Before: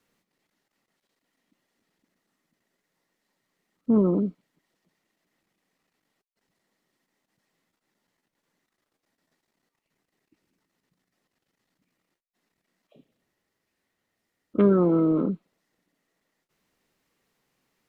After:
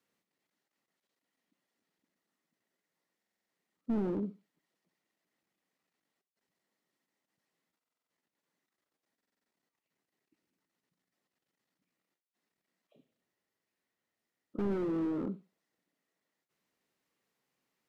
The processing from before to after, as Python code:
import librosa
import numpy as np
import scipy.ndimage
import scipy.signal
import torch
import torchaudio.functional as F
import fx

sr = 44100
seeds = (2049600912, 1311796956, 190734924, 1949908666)

p1 = fx.highpass(x, sr, hz=150.0, slope=6)
p2 = p1 + fx.room_flutter(p1, sr, wall_m=11.1, rt60_s=0.23, dry=0)
p3 = fx.buffer_glitch(p2, sr, at_s=(3.18, 7.78, 9.16), block=2048, repeats=6)
p4 = fx.slew_limit(p3, sr, full_power_hz=27.0)
y = p4 * librosa.db_to_amplitude(-8.5)